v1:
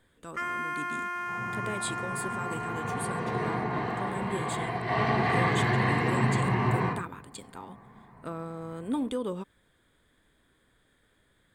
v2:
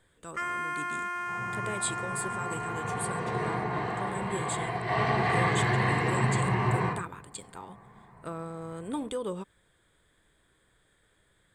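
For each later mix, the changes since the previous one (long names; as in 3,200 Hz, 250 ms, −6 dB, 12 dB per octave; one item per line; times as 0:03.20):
master: add thirty-one-band graphic EQ 250 Hz −9 dB, 8,000 Hz +7 dB, 16,000 Hz −10 dB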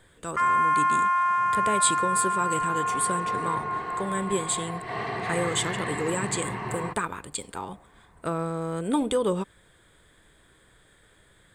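speech +9.0 dB
first sound: add high-pass with resonance 1,000 Hz, resonance Q 7.1
reverb: off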